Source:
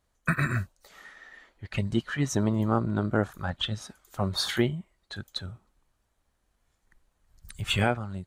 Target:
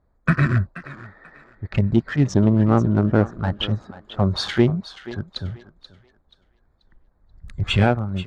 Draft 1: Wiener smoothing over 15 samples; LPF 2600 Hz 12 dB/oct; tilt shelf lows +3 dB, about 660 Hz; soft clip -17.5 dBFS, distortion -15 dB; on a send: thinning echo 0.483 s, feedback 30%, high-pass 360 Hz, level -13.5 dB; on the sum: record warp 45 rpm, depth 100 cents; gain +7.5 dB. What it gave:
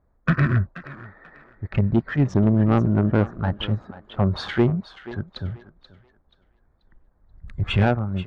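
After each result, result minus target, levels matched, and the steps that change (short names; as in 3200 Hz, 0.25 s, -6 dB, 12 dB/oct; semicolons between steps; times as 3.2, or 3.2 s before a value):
soft clip: distortion +10 dB; 4000 Hz band -4.0 dB
change: soft clip -10.5 dBFS, distortion -26 dB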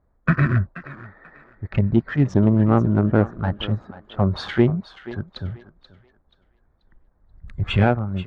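4000 Hz band -6.0 dB
change: LPF 5500 Hz 12 dB/oct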